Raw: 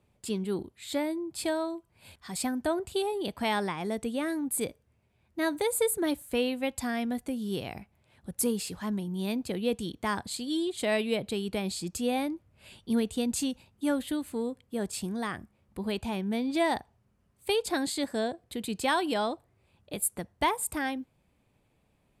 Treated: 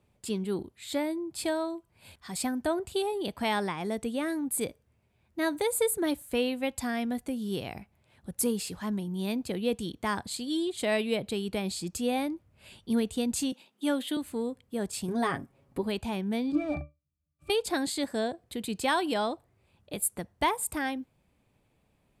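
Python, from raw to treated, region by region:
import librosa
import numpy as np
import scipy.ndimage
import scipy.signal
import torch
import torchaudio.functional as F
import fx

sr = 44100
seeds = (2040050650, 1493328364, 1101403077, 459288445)

y = fx.chain(x, sr, fx.highpass(hz=220.0, slope=24),
    fx.peak_eq(hz=3300.0, db=7.0, octaves=0.51), at=(13.52, 14.17))
y = fx.chain(y, sr, fx.peak_eq(hz=400.0, db=6.5, octaves=2.7),
    fx.comb(ms=7.3, depth=0.7), at=(15.08, 15.83))
y = fx.chain(y, sr, fx.bass_treble(bass_db=5, treble_db=11),
    fx.leveller(passes=5),
    fx.octave_resonator(note='D', decay_s=0.2), at=(16.52, 17.5))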